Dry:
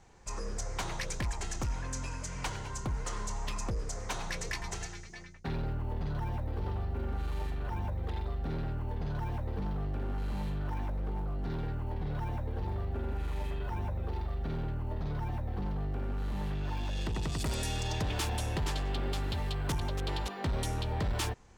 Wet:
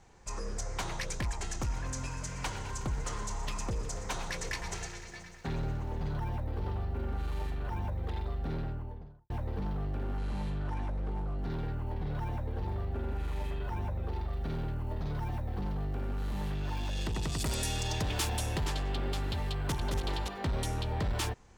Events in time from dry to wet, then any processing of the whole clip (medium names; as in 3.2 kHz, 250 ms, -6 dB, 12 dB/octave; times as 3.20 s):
1.52–6.16 s: bit-crushed delay 122 ms, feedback 80%, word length 11-bit, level -14 dB
8.50–9.30 s: studio fade out
10.18–11.39 s: low-pass 11 kHz 24 dB/octave
14.33–18.66 s: treble shelf 4.7 kHz +5.5 dB
19.52–19.92 s: echo throw 220 ms, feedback 25%, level -5 dB